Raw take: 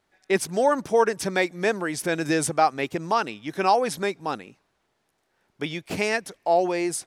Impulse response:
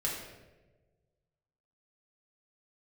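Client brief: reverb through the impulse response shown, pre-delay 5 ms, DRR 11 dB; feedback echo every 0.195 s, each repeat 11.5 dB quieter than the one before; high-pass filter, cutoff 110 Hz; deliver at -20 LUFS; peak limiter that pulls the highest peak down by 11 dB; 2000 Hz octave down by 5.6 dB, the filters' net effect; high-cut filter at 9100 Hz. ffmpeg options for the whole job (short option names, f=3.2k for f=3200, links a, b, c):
-filter_complex "[0:a]highpass=110,lowpass=9.1k,equalizer=f=2k:t=o:g=-7,alimiter=limit=-19.5dB:level=0:latency=1,aecho=1:1:195|390|585:0.266|0.0718|0.0194,asplit=2[a][b];[1:a]atrim=start_sample=2205,adelay=5[c];[b][c]afir=irnorm=-1:irlink=0,volume=-16dB[d];[a][d]amix=inputs=2:normalize=0,volume=10dB"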